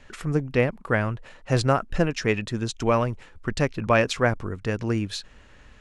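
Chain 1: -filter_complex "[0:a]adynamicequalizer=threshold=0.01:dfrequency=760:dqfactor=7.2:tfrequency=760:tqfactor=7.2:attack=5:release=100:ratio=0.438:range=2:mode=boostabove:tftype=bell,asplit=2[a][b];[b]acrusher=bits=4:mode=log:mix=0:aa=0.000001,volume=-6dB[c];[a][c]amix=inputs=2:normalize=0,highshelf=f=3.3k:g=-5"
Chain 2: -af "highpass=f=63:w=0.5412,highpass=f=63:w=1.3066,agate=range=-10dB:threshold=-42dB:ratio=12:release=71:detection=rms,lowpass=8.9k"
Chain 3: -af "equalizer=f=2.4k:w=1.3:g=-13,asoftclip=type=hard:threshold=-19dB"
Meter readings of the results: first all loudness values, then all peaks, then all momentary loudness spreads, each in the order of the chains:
-22.0, -25.0, -28.0 LUFS; -2.5, -6.0, -19.0 dBFS; 9, 9, 6 LU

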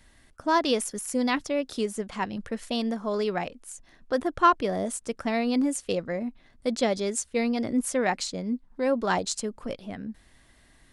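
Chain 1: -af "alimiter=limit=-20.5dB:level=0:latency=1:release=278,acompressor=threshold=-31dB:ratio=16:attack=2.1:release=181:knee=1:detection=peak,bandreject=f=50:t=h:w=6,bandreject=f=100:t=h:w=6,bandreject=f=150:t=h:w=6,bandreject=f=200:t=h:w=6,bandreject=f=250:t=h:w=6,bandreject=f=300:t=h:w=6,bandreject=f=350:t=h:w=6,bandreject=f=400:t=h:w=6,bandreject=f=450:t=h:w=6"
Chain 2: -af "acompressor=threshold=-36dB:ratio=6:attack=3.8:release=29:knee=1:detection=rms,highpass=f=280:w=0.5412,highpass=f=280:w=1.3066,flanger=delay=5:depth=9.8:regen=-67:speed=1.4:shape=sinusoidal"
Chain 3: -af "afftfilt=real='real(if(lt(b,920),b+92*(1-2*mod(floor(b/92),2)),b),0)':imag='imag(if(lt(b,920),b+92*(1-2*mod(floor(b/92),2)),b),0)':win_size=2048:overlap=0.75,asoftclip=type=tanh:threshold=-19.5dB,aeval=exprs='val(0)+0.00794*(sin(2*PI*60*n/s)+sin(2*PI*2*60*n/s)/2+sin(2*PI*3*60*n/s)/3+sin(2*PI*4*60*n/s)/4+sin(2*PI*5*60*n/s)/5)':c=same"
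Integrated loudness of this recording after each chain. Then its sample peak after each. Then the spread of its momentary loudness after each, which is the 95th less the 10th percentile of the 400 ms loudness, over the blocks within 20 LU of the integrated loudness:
-38.5, -44.5, -27.0 LUFS; -22.5, -28.0, -18.5 dBFS; 5, 10, 11 LU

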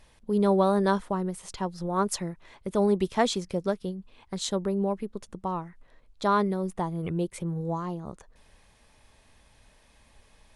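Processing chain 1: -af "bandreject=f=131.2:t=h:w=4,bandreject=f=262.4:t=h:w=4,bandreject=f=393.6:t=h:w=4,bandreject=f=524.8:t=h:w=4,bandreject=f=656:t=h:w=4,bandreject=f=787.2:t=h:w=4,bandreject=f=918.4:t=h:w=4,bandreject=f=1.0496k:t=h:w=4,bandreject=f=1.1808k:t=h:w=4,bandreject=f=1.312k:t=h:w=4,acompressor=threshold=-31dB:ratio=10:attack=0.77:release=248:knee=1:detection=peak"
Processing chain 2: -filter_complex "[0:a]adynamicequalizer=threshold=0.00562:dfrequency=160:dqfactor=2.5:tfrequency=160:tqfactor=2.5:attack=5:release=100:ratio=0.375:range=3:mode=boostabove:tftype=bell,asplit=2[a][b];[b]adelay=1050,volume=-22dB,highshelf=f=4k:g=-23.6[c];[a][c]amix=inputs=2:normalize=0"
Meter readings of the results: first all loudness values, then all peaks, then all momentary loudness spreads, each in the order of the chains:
-39.5, -27.0 LUFS; -23.5, -9.0 dBFS; 6, 12 LU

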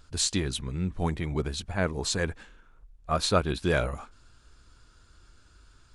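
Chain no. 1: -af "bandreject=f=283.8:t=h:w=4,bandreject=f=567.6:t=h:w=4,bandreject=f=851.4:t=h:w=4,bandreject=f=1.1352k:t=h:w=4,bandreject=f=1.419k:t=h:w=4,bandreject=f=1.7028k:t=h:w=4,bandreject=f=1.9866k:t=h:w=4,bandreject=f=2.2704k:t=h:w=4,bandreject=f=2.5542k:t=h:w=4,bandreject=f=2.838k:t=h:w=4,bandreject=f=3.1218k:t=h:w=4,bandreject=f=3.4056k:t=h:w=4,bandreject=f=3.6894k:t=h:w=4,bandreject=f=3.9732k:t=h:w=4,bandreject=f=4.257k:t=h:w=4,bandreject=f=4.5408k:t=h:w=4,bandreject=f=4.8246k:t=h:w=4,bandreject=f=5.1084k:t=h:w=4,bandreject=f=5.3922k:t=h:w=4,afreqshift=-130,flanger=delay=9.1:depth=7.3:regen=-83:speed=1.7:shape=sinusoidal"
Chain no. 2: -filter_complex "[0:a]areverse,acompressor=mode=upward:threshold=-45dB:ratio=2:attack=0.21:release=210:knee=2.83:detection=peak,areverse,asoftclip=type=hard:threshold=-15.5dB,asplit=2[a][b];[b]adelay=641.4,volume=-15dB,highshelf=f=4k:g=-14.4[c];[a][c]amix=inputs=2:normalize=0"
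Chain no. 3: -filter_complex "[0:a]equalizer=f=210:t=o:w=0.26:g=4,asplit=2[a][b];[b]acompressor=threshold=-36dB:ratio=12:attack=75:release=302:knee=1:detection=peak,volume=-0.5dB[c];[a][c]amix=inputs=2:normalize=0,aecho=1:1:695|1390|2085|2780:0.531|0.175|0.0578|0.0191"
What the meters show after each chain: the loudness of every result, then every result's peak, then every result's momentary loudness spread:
-34.5, -29.0, -26.0 LUFS; -13.5, -14.5, -8.0 dBFS; 9, 18, 16 LU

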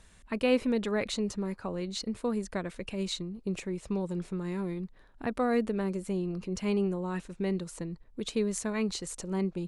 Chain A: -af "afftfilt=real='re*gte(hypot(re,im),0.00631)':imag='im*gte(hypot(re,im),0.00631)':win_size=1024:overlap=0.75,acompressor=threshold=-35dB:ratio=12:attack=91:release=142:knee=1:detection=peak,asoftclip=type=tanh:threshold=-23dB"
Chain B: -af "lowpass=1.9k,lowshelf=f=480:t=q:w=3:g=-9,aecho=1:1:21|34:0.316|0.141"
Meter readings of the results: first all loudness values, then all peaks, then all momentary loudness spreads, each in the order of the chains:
-36.5, -37.5 LUFS; -23.5, -18.5 dBFS; 4, 13 LU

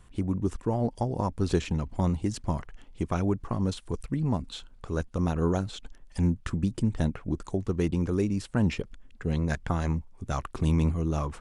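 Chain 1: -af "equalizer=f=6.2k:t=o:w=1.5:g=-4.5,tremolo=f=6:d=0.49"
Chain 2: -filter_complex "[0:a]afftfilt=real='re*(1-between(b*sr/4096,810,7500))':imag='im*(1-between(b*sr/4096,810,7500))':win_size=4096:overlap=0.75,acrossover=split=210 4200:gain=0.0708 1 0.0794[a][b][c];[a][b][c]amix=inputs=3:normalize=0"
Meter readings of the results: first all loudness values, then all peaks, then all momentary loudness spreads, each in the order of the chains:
-31.5, -35.0 LUFS; -14.0, -14.0 dBFS; 8, 9 LU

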